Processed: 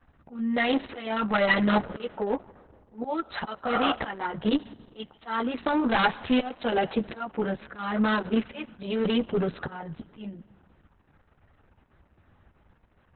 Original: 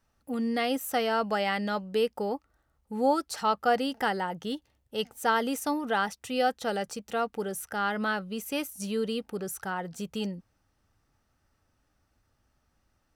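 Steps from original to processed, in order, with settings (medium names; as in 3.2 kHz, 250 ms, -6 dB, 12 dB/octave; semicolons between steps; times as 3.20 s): local Wiener filter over 9 samples; 3.69–3.89 s: spectral replace 580–1800 Hz before; dynamic bell 440 Hz, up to -4 dB, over -36 dBFS, Q 0.83; slow attack 514 ms; 8.13–9.00 s: peaking EQ 170 Hz -8 dB 0.35 oct; in parallel at -3 dB: sine folder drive 7 dB, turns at -16 dBFS; on the sum: chorus voices 2, 0.33 Hz, delay 13 ms, depth 1.1 ms; one-sided clip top -25.5 dBFS, bottom -15.5 dBFS; on a send at -21 dB: reverberation RT60 2.0 s, pre-delay 43 ms; on the sum: trim +5 dB; Opus 6 kbps 48 kHz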